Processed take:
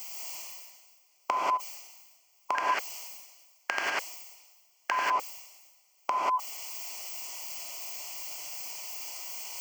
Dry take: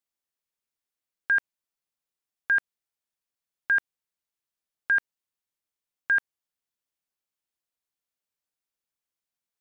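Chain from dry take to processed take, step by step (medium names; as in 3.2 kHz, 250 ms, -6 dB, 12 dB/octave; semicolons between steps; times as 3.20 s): pitch shift switched off and on -8 st, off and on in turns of 182 ms; static phaser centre 2.5 kHz, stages 8; in parallel at +1.5 dB: compression, threshold -32 dBFS, peak gain reduction 11.5 dB; on the sum: resonant high-pass 510 Hz, resonance Q 4.9; peaking EQ 1.3 kHz -10 dB 0.53 oct; gated-style reverb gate 210 ms rising, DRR -5.5 dB; reverse; upward compressor, threshold -34 dBFS; reverse; tilt EQ +1.5 dB/octave; spectrum-flattening compressor 2:1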